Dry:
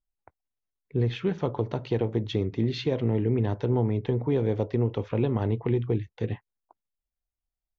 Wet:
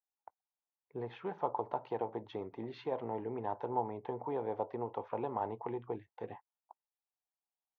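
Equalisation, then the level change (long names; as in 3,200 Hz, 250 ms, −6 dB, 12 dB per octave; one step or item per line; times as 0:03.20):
resonant band-pass 860 Hz, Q 3.7
+4.5 dB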